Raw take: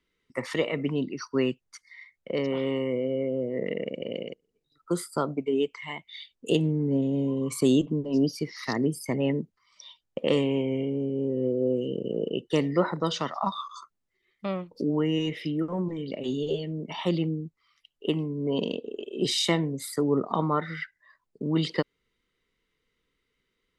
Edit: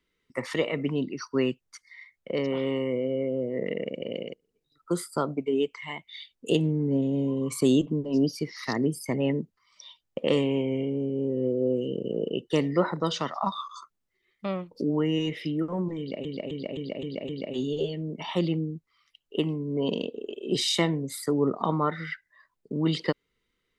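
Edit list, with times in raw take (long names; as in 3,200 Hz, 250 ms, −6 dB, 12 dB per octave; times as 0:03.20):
0:15.99–0:16.25: repeat, 6 plays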